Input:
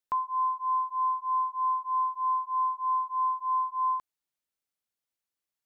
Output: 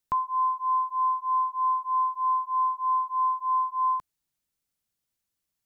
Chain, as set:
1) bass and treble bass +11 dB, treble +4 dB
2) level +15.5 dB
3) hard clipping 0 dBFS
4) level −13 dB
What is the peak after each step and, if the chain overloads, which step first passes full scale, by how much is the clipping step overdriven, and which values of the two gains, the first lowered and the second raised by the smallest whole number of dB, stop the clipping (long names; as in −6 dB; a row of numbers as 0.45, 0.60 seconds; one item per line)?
−20.5, −5.0, −5.0, −18.0 dBFS
no step passes full scale